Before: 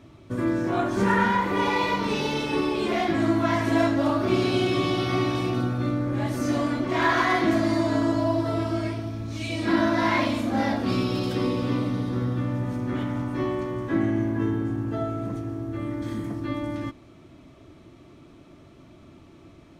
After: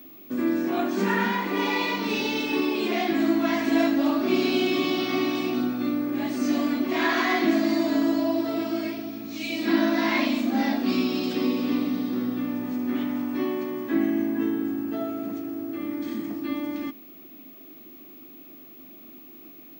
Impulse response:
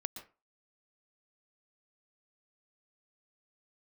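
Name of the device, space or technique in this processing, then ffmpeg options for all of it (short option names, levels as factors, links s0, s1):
old television with a line whistle: -af "highpass=f=210:w=0.5412,highpass=f=210:w=1.3066,equalizer=f=250:t=q:w=4:g=5,equalizer=f=530:t=q:w=4:g=-7,equalizer=f=990:t=q:w=4:g=-5,equalizer=f=1400:t=q:w=4:g=-4,equalizer=f=2600:t=q:w=4:g=4,equalizer=f=4400:t=q:w=4:g=3,lowpass=f=8400:w=0.5412,lowpass=f=8400:w=1.3066,aeval=exprs='val(0)+0.00562*sin(2*PI*15625*n/s)':c=same"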